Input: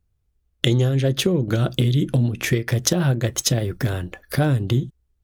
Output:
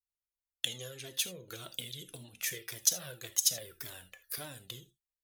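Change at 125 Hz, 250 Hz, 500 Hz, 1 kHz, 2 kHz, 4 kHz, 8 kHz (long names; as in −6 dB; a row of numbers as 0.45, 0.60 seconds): −33.0, −31.5, −24.0, −21.0, −15.0, −9.5, −4.5 decibels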